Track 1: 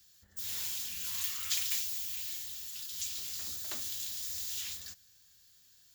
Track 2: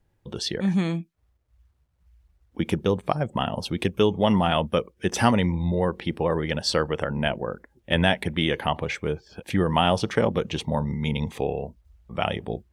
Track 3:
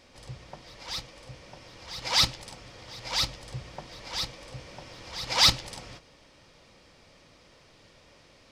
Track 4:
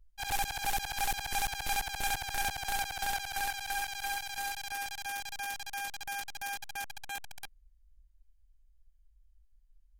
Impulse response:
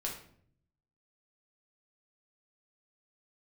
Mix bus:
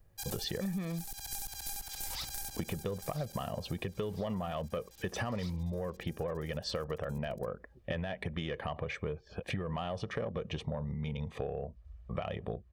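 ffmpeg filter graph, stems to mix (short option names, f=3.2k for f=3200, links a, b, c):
-filter_complex "[0:a]adynamicsmooth=sensitivity=6.5:basefreq=2.6k,adelay=400,volume=-17.5dB[a];[1:a]aemphasis=mode=reproduction:type=75kf,aecho=1:1:1.7:0.47,alimiter=limit=-14.5dB:level=0:latency=1:release=56,volume=1.5dB[b];[2:a]agate=range=-14dB:threshold=-46dB:ratio=16:detection=peak,volume=-19dB[c];[3:a]acrossover=split=440[d][e];[e]acompressor=threshold=-40dB:ratio=10[f];[d][f]amix=inputs=2:normalize=0,aexciter=amount=5.2:drive=4:freq=4k,volume=-7dB,afade=t=out:st=3.24:d=0.54:silence=0.281838[g];[a][b][c][g]amix=inputs=4:normalize=0,asoftclip=type=tanh:threshold=-12.5dB,acompressor=threshold=-33dB:ratio=10"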